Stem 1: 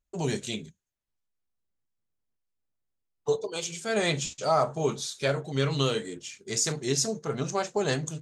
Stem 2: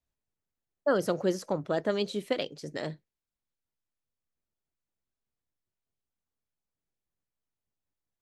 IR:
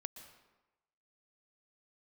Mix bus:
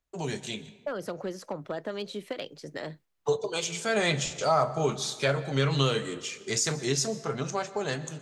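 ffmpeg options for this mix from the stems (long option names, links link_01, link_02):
-filter_complex "[0:a]dynaudnorm=framelen=200:gausssize=13:maxgain=7.5dB,volume=-2dB,asplit=2[link_01][link_02];[link_02]volume=-7.5dB[link_03];[1:a]acrossover=split=120[link_04][link_05];[link_05]acompressor=threshold=-28dB:ratio=3[link_06];[link_04][link_06]amix=inputs=2:normalize=0,asoftclip=type=hard:threshold=-22dB,volume=-3.5dB,asplit=2[link_07][link_08];[link_08]apad=whole_len=362426[link_09];[link_01][link_09]sidechaingate=range=-6dB:threshold=-55dB:ratio=16:detection=peak[link_10];[2:a]atrim=start_sample=2205[link_11];[link_03][link_11]afir=irnorm=-1:irlink=0[link_12];[link_10][link_07][link_12]amix=inputs=3:normalize=0,equalizer=frequency=1500:width=0.36:gain=5.5,acrossover=split=150[link_13][link_14];[link_14]acompressor=threshold=-33dB:ratio=1.5[link_15];[link_13][link_15]amix=inputs=2:normalize=0"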